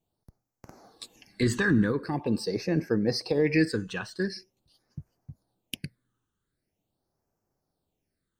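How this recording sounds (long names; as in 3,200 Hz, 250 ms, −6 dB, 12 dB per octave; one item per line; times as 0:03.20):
phaser sweep stages 8, 0.44 Hz, lowest notch 650–3,500 Hz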